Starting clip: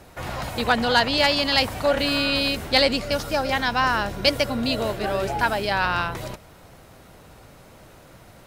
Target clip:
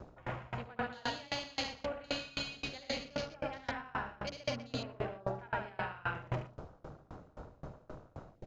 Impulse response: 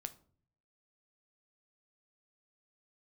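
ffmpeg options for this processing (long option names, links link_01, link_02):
-filter_complex "[0:a]aecho=1:1:72.89|113.7:0.708|0.355,areverse,acompressor=threshold=-32dB:ratio=16,areverse,aresample=16000,aresample=44100,asplit=2[link_01][link_02];[1:a]atrim=start_sample=2205,adelay=120[link_03];[link_02][link_03]afir=irnorm=-1:irlink=0,volume=0.5dB[link_04];[link_01][link_04]amix=inputs=2:normalize=0,afwtdn=0.00794,aeval=exprs='val(0)*pow(10,-27*if(lt(mod(3.8*n/s,1),2*abs(3.8)/1000),1-mod(3.8*n/s,1)/(2*abs(3.8)/1000),(mod(3.8*n/s,1)-2*abs(3.8)/1000)/(1-2*abs(3.8)/1000))/20)':channel_layout=same,volume=2dB"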